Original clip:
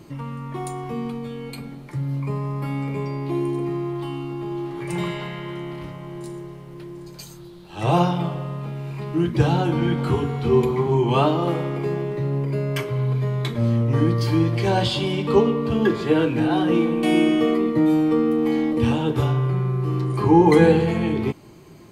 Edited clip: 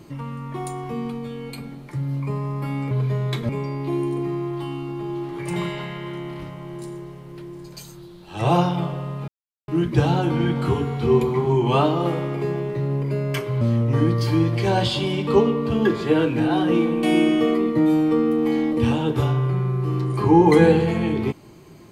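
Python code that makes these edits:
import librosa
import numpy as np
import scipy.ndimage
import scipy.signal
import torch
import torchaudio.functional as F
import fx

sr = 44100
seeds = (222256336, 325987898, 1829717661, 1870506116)

y = fx.edit(x, sr, fx.silence(start_s=8.7, length_s=0.4),
    fx.move(start_s=13.03, length_s=0.58, to_s=2.91), tone=tone)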